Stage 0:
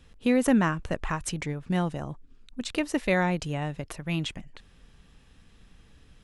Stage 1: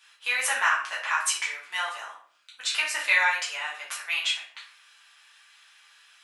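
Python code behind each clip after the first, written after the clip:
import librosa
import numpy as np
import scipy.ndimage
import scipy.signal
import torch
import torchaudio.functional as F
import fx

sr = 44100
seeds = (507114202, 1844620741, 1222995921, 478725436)

y = scipy.signal.sosfilt(scipy.signal.butter(4, 1100.0, 'highpass', fs=sr, output='sos'), x)
y = fx.room_shoebox(y, sr, seeds[0], volume_m3=58.0, walls='mixed', distance_m=1.5)
y = y * librosa.db_to_amplitude(2.5)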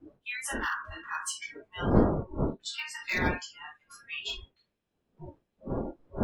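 y = np.minimum(x, 2.0 * 10.0 ** (-16.5 / 20.0) - x)
y = fx.dmg_wind(y, sr, seeds[1], corner_hz=400.0, level_db=-25.0)
y = fx.noise_reduce_blind(y, sr, reduce_db=27)
y = y * librosa.db_to_amplitude(-8.5)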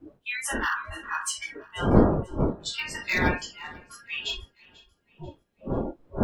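y = fx.echo_feedback(x, sr, ms=490, feedback_pct=41, wet_db=-23)
y = y * librosa.db_to_amplitude(4.5)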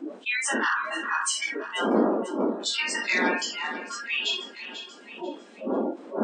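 y = fx.brickwall_bandpass(x, sr, low_hz=200.0, high_hz=9100.0)
y = fx.env_flatten(y, sr, amount_pct=50)
y = y * librosa.db_to_amplitude(-3.0)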